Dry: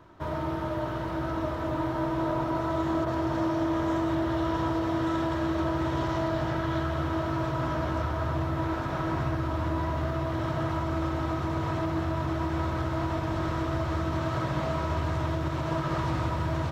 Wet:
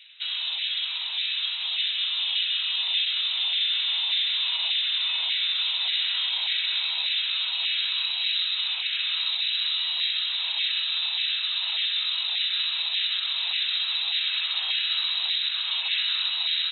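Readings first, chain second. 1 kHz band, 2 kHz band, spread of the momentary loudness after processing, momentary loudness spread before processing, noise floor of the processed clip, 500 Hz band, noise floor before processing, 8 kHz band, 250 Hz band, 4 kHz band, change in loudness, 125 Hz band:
-15.5 dB, +7.0 dB, 2 LU, 3 LU, -30 dBFS, under -30 dB, -32 dBFS, n/a, under -40 dB, +25.5 dB, +5.5 dB, under -40 dB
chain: inverted band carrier 3900 Hz; LFO high-pass saw down 1.7 Hz 800–2000 Hz

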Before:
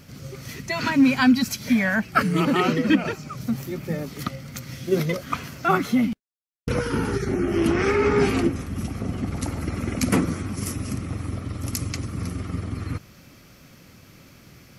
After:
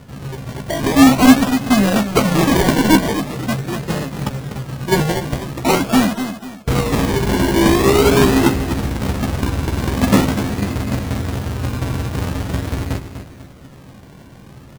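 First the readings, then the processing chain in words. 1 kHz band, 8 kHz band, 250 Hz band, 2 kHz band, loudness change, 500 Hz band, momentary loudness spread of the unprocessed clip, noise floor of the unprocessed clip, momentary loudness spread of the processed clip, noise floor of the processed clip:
+7.5 dB, +9.5 dB, +7.5 dB, +4.5 dB, +7.5 dB, +7.5 dB, 12 LU, -50 dBFS, 13 LU, -40 dBFS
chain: half-waves squared off; air absorption 170 m; feedback echo 0.246 s, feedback 36%, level -10 dB; decimation with a swept rate 27×, swing 60% 0.44 Hz; doubler 15 ms -7.5 dB; gain +2.5 dB

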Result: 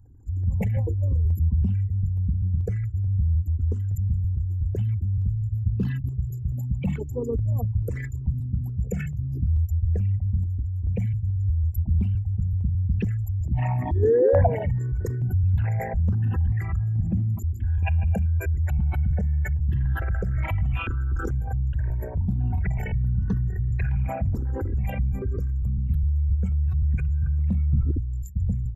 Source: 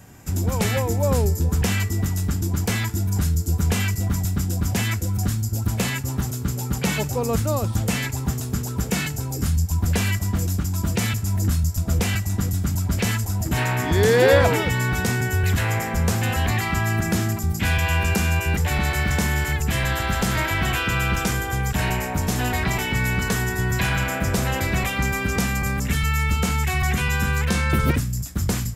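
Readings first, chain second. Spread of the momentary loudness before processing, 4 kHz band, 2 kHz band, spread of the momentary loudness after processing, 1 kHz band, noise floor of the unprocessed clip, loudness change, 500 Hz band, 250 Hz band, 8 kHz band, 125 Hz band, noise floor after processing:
4 LU, under -25 dB, -17.5 dB, 5 LU, -11.5 dB, -29 dBFS, -3.0 dB, -4.0 dB, -7.5 dB, under -25 dB, -0.5 dB, -32 dBFS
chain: formant sharpening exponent 3; step phaser 2.3 Hz 650–2200 Hz

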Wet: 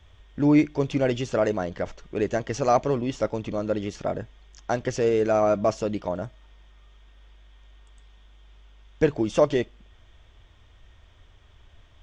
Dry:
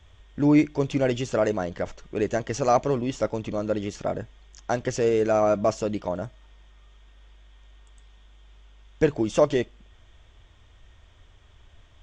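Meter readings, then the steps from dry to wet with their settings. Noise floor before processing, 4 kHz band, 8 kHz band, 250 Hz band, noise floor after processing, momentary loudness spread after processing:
-55 dBFS, -0.5 dB, -2.5 dB, 0.0 dB, -55 dBFS, 12 LU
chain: bell 7300 Hz -4.5 dB 0.44 oct

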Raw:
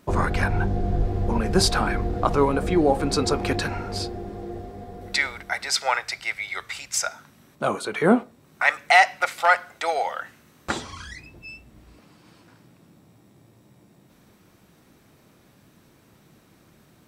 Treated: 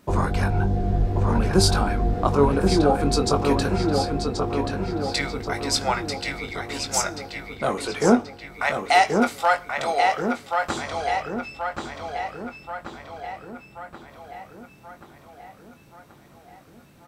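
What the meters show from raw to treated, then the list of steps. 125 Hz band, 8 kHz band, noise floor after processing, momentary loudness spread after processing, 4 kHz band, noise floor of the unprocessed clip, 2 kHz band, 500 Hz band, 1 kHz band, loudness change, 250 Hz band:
+3.5 dB, +1.0 dB, -51 dBFS, 17 LU, +0.5 dB, -57 dBFS, -3.5 dB, +2.5 dB, +1.5 dB, 0.0 dB, +3.0 dB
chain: dynamic EQ 1900 Hz, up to -7 dB, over -38 dBFS, Q 1.4; doubler 21 ms -8 dB; darkening echo 1.081 s, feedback 57%, low-pass 4500 Hz, level -4 dB

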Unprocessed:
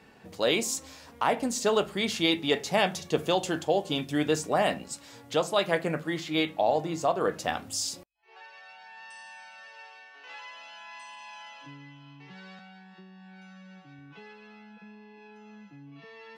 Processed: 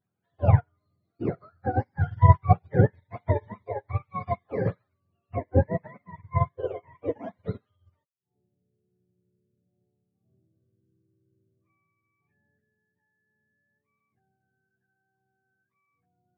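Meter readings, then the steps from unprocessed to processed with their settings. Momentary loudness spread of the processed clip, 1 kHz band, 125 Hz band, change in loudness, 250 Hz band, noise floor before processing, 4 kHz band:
15 LU, 0.0 dB, +15.5 dB, +1.5 dB, -2.5 dB, -52 dBFS, under -30 dB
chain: spectrum mirrored in octaves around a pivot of 570 Hz; upward expander 2.5:1, over -41 dBFS; gain +8.5 dB

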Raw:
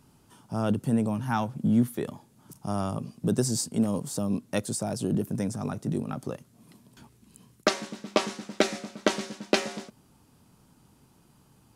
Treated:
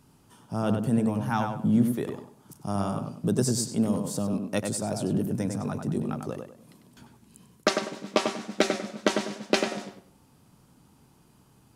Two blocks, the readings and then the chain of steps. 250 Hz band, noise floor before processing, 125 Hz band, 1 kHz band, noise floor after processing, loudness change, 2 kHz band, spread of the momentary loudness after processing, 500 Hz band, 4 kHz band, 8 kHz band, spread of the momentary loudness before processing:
+1.0 dB, -61 dBFS, +1.0 dB, +1.5 dB, -60 dBFS, +1.0 dB, +1.0 dB, 10 LU, +1.5 dB, +0.5 dB, 0.0 dB, 10 LU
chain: tape echo 97 ms, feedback 32%, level -4 dB, low-pass 2500 Hz

